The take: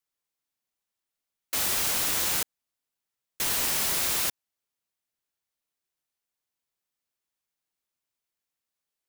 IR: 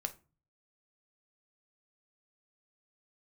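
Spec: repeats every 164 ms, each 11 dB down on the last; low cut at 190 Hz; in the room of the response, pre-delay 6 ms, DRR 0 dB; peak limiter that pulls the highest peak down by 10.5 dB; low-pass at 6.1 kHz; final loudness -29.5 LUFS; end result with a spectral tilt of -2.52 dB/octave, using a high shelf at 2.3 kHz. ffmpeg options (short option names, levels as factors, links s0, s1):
-filter_complex "[0:a]highpass=190,lowpass=6100,highshelf=f=2300:g=-4.5,alimiter=level_in=2.37:limit=0.0631:level=0:latency=1,volume=0.422,aecho=1:1:164|328|492:0.282|0.0789|0.0221,asplit=2[s0][s1];[1:a]atrim=start_sample=2205,adelay=6[s2];[s1][s2]afir=irnorm=-1:irlink=0,volume=1[s3];[s0][s3]amix=inputs=2:normalize=0,volume=2.37"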